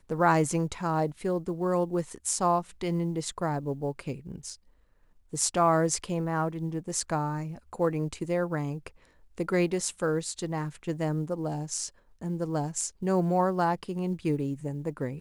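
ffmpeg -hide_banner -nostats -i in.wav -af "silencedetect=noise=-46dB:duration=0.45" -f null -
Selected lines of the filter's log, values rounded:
silence_start: 4.55
silence_end: 5.33 | silence_duration: 0.78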